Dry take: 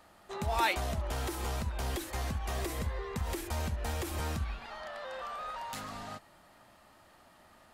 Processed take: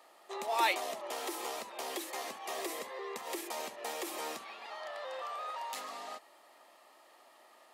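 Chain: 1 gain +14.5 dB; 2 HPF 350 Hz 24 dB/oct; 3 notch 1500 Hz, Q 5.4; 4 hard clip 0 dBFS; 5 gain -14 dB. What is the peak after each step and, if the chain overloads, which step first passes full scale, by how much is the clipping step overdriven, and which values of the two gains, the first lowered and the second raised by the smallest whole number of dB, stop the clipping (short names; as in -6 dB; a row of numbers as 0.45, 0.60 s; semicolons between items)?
-1.5, -1.5, -2.5, -2.5, -16.5 dBFS; no overload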